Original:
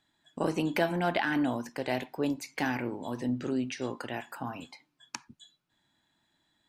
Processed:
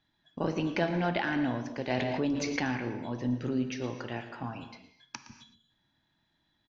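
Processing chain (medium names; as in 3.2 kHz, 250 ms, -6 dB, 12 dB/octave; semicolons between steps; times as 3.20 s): elliptic low-pass 6.1 kHz, stop band 40 dB; bass shelf 150 Hz +9.5 dB; delay 115 ms -15.5 dB; gated-style reverb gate 290 ms flat, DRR 9.5 dB; 1.90–2.60 s: level flattener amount 70%; trim -2 dB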